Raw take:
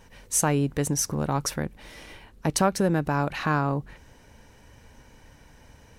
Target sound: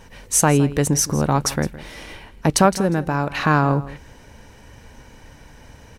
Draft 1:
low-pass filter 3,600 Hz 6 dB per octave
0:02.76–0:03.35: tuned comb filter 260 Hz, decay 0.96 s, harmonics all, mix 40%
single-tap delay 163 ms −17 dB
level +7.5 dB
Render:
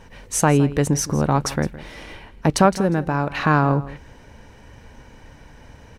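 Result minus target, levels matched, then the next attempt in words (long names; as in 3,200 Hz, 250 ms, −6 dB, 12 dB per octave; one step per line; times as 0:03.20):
8,000 Hz band −4.5 dB
low-pass filter 12,000 Hz 6 dB per octave
0:02.76–0:03.35: tuned comb filter 260 Hz, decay 0.96 s, harmonics all, mix 40%
single-tap delay 163 ms −17 dB
level +7.5 dB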